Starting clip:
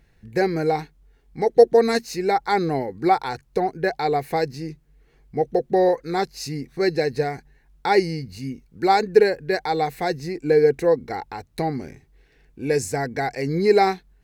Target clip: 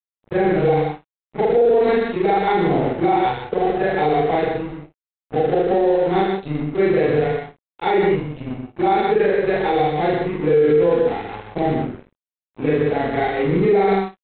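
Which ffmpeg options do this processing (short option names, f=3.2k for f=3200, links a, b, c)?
-af "afftfilt=real='re':imag='-im':win_size=4096:overlap=0.75,equalizer=f=1.6k:t=o:w=1.1:g=-5.5,aresample=8000,aeval=exprs='sgn(val(0))*max(abs(val(0))-0.00841,0)':c=same,aresample=44100,aecho=1:1:76|123|143|180:0.376|0.501|0.168|0.106,alimiter=level_in=19dB:limit=-1dB:release=50:level=0:latency=1,volume=-7.5dB"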